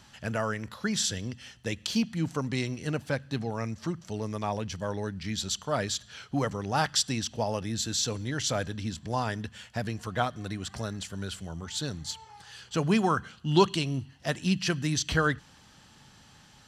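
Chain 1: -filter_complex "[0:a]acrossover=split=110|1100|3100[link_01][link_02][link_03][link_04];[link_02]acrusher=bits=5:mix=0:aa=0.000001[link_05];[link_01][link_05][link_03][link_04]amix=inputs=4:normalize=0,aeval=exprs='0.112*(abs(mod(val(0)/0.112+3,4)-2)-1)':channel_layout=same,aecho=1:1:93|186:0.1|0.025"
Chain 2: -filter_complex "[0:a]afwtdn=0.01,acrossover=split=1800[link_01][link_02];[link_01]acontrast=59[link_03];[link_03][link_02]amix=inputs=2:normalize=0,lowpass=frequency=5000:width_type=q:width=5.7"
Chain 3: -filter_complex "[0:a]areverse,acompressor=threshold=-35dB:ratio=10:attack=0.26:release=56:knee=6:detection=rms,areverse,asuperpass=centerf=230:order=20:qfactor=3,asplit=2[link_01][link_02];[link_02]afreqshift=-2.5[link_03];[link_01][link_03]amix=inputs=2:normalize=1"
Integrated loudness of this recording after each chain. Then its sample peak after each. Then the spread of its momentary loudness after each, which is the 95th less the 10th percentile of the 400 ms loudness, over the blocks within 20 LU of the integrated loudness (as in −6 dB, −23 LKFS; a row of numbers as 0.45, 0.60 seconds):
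−31.0, −24.0, −53.0 LKFS; −18.5, −2.5, −35.0 dBFS; 9, 12, 13 LU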